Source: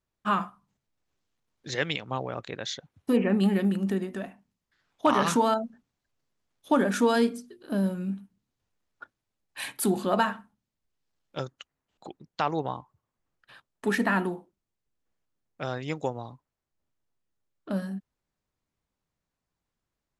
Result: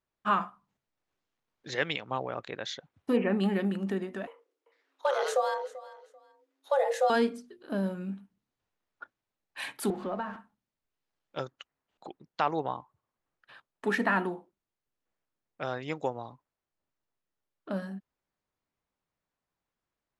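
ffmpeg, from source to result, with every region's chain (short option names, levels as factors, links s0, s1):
-filter_complex "[0:a]asettb=1/sr,asplit=3[s0][s1][s2];[s0]atrim=end=4.274[s3];[s1]atrim=start=4.27:end=7.1,asetpts=PTS-STARTPTS,afade=t=in:d=0.004:c=qsin,afade=t=out:st=2.826:d=0.004:c=qsin,acrossover=split=480|3000[s4][s5][s6];[s5]acompressor=threshold=0.00141:ratio=1.5:attack=3.2:release=140:knee=2.83:detection=peak[s7];[s4][s7][s6]amix=inputs=3:normalize=0,afreqshift=270,aecho=1:1:389|778:0.126|0.029,atrim=end_sample=124803[s8];[s2]atrim=start=7.096[s9];[s3][s8]acrossfade=d=0.004:c1=hsin:c2=qsin[s10];[s10][s9]acrossfade=d=0.004:c1=qsin:c2=hsin,asettb=1/sr,asplit=3[s11][s12][s13];[s11]atrim=end=9.904[s14];[s12]atrim=start=9.9:end=10.36,asetpts=PTS-STARTPTS,afade=t=in:d=0.004:c=qsin,afade=t=out:st=0.456:d=0.004:c=qsin,aeval=exprs='val(0)+0.5*0.0188*sgn(val(0))':c=same,lowpass=f=1400:p=1,acrossover=split=120|260[s15][s16][s17];[s15]acompressor=threshold=0.00251:ratio=4[s18];[s16]acompressor=threshold=0.0141:ratio=4[s19];[s17]acompressor=threshold=0.0224:ratio=4[s20];[s18][s19][s20]amix=inputs=3:normalize=0[s21];[s13]atrim=start=10.356[s22];[s14][s21]acrossfade=d=0.004:c1=hsin:c2=qsin[s23];[s23][s22]acrossfade=d=0.004:c1=qsin:c2=hsin,lowpass=f=2800:p=1,lowshelf=f=260:g=-9.5,volume=1.12"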